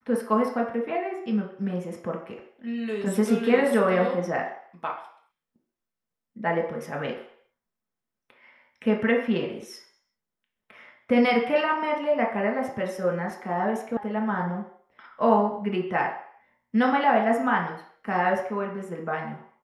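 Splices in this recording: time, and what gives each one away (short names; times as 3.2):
13.97 sound cut off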